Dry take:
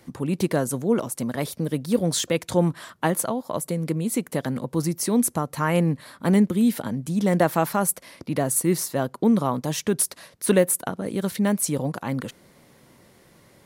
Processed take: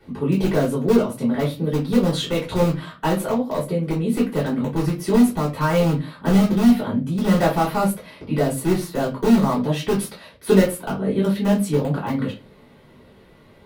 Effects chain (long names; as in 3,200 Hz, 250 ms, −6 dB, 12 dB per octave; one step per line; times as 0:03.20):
high shelf with overshoot 4,500 Hz −9.5 dB, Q 1.5
in parallel at −8.5 dB: wrap-around overflow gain 15 dB
on the sum: convolution reverb, pre-delay 3 ms, DRR −9 dB
level −12 dB